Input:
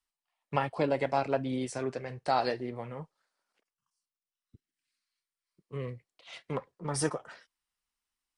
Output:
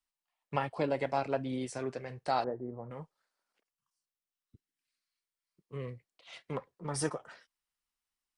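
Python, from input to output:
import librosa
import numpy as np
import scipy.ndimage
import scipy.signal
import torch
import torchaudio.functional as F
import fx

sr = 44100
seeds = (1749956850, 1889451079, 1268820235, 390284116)

y = fx.bessel_lowpass(x, sr, hz=810.0, order=8, at=(2.44, 2.91))
y = y * librosa.db_to_amplitude(-3.0)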